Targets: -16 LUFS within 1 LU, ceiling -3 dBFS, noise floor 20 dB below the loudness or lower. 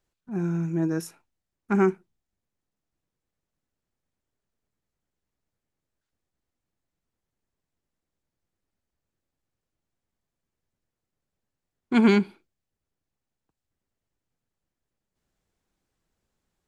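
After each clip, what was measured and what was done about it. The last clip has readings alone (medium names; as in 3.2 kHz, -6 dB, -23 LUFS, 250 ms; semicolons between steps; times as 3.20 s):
loudness -24.5 LUFS; peak level -9.0 dBFS; loudness target -16.0 LUFS
-> trim +8.5 dB; peak limiter -3 dBFS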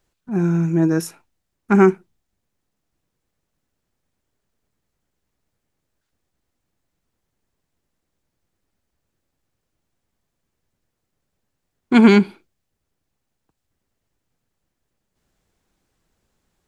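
loudness -16.5 LUFS; peak level -3.0 dBFS; noise floor -78 dBFS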